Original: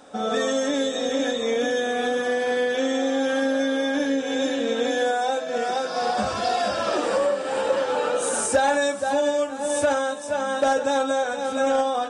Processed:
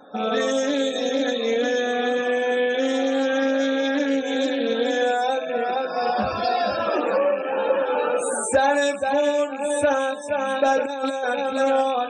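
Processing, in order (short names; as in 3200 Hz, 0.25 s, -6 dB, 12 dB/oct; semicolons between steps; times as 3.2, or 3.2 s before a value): rattling part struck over -41 dBFS, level -26 dBFS; 5.54–5.99 high shelf 4100 Hz -6 dB; 10.77–11.42 negative-ratio compressor -25 dBFS, ratio -0.5; loudest bins only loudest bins 64; Doppler distortion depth 0.1 ms; gain +1.5 dB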